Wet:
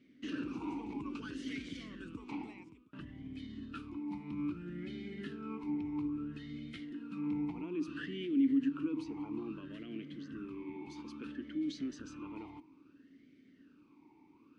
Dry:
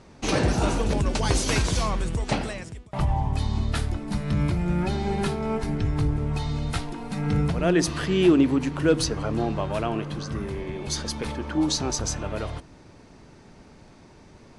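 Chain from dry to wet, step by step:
brickwall limiter −18 dBFS, peak gain reduction 8.5 dB
formant filter swept between two vowels i-u 0.6 Hz
level −1.5 dB

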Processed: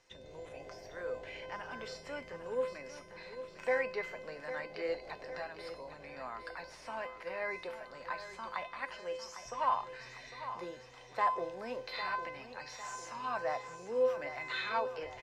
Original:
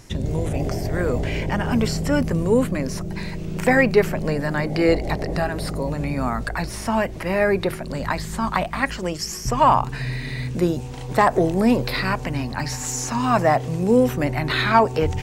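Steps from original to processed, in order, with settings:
three-way crossover with the lows and the highs turned down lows −18 dB, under 440 Hz, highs −20 dB, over 5,800 Hz
tuned comb filter 510 Hz, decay 0.5 s, mix 90%
on a send: repeating echo 803 ms, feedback 51%, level −11 dB
on the sum: level +1 dB

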